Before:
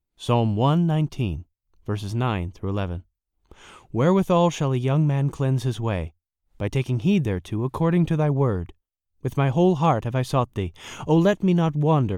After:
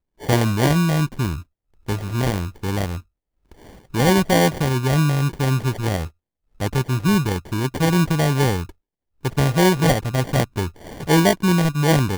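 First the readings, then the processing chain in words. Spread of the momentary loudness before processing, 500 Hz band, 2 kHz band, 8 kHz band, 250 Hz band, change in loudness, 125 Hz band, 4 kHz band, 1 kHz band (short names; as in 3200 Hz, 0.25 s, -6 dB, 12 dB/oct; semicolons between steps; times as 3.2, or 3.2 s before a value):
12 LU, +1.5 dB, +10.0 dB, +13.5 dB, +2.5 dB, +3.0 dB, +2.5 dB, +9.0 dB, +2.5 dB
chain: sample-rate reducer 1300 Hz, jitter 0%; gain +2.5 dB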